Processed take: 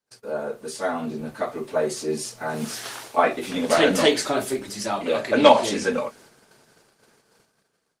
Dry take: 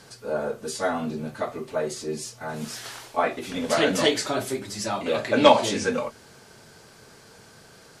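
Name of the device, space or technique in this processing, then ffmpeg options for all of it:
video call: -af "highpass=160,dynaudnorm=f=660:g=5:m=3.35,agate=range=0.0158:threshold=0.00501:ratio=16:detection=peak,volume=0.891" -ar 48000 -c:a libopus -b:a 24k

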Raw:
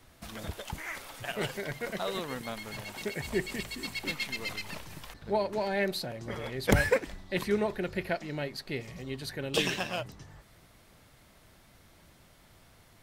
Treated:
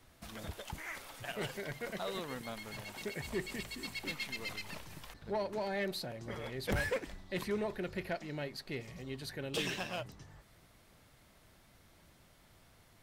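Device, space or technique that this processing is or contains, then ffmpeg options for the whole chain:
saturation between pre-emphasis and de-emphasis: -af "highshelf=f=6700:g=7,asoftclip=type=tanh:threshold=0.0668,highshelf=f=6700:g=-7,volume=0.596"

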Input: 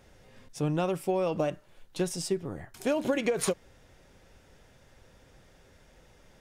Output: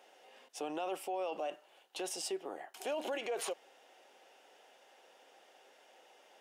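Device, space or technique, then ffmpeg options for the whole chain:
laptop speaker: -af "highpass=f=350:w=0.5412,highpass=f=350:w=1.3066,equalizer=f=770:t=o:w=0.45:g=10,equalizer=f=2900:t=o:w=0.34:g=9,alimiter=level_in=1.26:limit=0.0631:level=0:latency=1:release=23,volume=0.794,volume=0.668"

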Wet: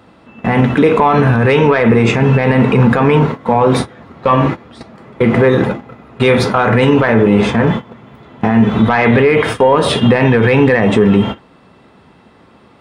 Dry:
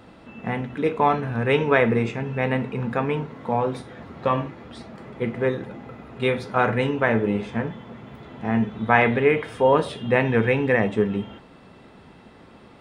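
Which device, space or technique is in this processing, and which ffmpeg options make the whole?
mastering chain: -af "agate=range=0.112:threshold=0.0178:ratio=16:detection=peak,highpass=51,equalizer=f=1100:t=o:w=0.54:g=3,acompressor=threshold=0.0794:ratio=2.5,asoftclip=type=tanh:threshold=0.266,alimiter=level_in=13.3:limit=0.891:release=50:level=0:latency=1,volume=0.891"

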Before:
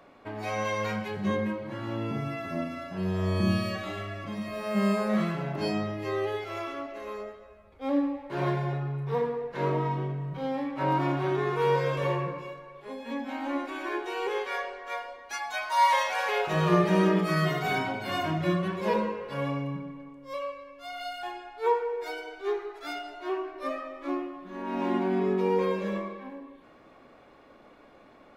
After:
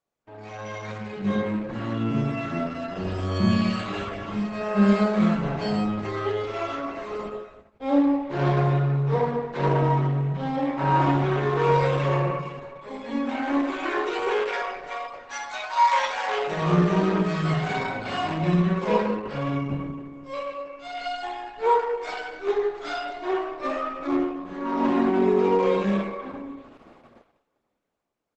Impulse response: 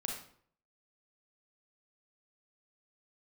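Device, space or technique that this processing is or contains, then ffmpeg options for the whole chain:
speakerphone in a meeting room: -filter_complex "[0:a]asplit=3[s0][s1][s2];[s0]afade=t=out:st=8.17:d=0.02[s3];[s1]lowpass=f=7800:w=0.5412,lowpass=f=7800:w=1.3066,afade=t=in:st=8.17:d=0.02,afade=t=out:st=9.22:d=0.02[s4];[s2]afade=t=in:st=9.22:d=0.02[s5];[s3][s4][s5]amix=inputs=3:normalize=0[s6];[1:a]atrim=start_sample=2205[s7];[s6][s7]afir=irnorm=-1:irlink=0,asplit=2[s8][s9];[s9]adelay=100,highpass=300,lowpass=3400,asoftclip=type=hard:threshold=0.141,volume=0.126[s10];[s8][s10]amix=inputs=2:normalize=0,dynaudnorm=f=240:g=11:m=4.73,agate=range=0.0501:threshold=0.01:ratio=16:detection=peak,volume=0.473" -ar 48000 -c:a libopus -b:a 12k

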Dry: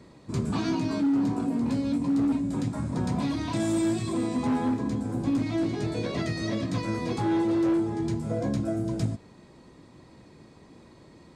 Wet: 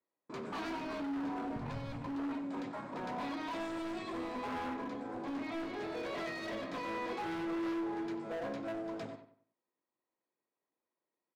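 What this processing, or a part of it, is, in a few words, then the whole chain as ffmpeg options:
walkie-talkie: -filter_complex "[0:a]highpass=78,highpass=500,lowpass=2700,asoftclip=type=hard:threshold=0.0168,agate=range=0.0224:threshold=0.00316:ratio=16:detection=peak,asettb=1/sr,asplit=3[s0][s1][s2];[s0]atrim=end=1.564[s3];[s1]atrim=start=1.56:end=2.07,asetpts=PTS-STARTPTS,afade=t=in:d=0.004:c=qsin,afade=t=out:st=0.506:d=0.004:c=qsin,lowshelf=f=180:t=q:w=3:g=13.5[s4];[s2]atrim=start=2.066[s5];[s3][s4]acrossfade=d=0.004:c1=hsin:c2=qsin[s6];[s6][s5]acrossfade=d=0.004:c1=qsin:c2=hsin,asplit=2[s7][s8];[s8]adelay=93,lowpass=f=2900:p=1,volume=0.299,asplit=2[s9][s10];[s10]adelay=93,lowpass=f=2900:p=1,volume=0.34,asplit=2[s11][s12];[s12]adelay=93,lowpass=f=2900:p=1,volume=0.34,asplit=2[s13][s14];[s14]adelay=93,lowpass=f=2900:p=1,volume=0.34[s15];[s7][s9][s11][s13][s15]amix=inputs=5:normalize=0,volume=0.891"

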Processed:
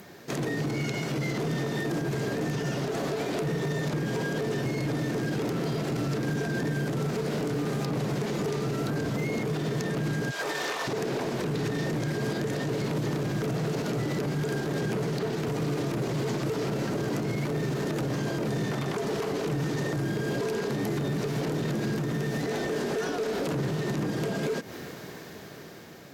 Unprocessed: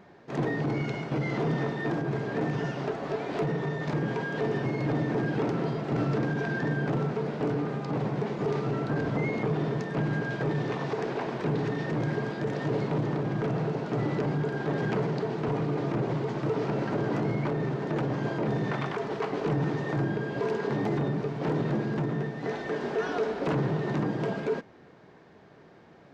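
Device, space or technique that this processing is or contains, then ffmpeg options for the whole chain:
FM broadcast chain: -filter_complex "[0:a]asplit=3[s0][s1][s2];[s0]afade=t=out:st=10.3:d=0.02[s3];[s1]highpass=1100,afade=t=in:st=10.3:d=0.02,afade=t=out:st=10.87:d=0.02[s4];[s2]afade=t=in:st=10.87:d=0.02[s5];[s3][s4][s5]amix=inputs=3:normalize=0,highpass=45,dynaudnorm=f=780:g=7:m=5.62,acrossover=split=1000|4200[s6][s7][s8];[s6]acompressor=threshold=0.0794:ratio=4[s9];[s7]acompressor=threshold=0.0112:ratio=4[s10];[s8]acompressor=threshold=0.00158:ratio=4[s11];[s9][s10][s11]amix=inputs=3:normalize=0,aemphasis=mode=production:type=50fm,alimiter=level_in=1.41:limit=0.0631:level=0:latency=1:release=146,volume=0.708,asoftclip=type=hard:threshold=0.0316,lowpass=f=15000:w=0.5412,lowpass=f=15000:w=1.3066,aemphasis=mode=production:type=50fm,equalizer=f=870:t=o:w=0.82:g=-4.5,volume=2.11"

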